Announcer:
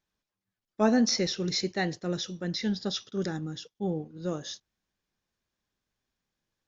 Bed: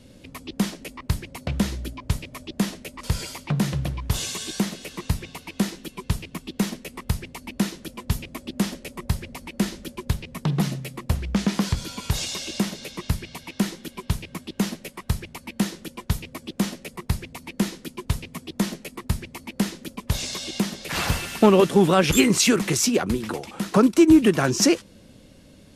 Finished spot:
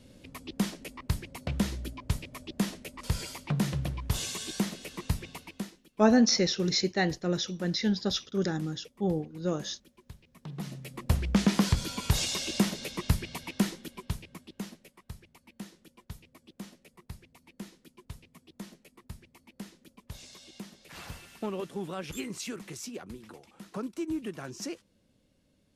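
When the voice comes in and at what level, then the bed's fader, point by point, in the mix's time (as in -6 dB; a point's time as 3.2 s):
5.20 s, +2.0 dB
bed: 5.4 s -5.5 dB
5.88 s -24 dB
10.26 s -24 dB
11.15 s -1.5 dB
13.43 s -1.5 dB
15.03 s -19.5 dB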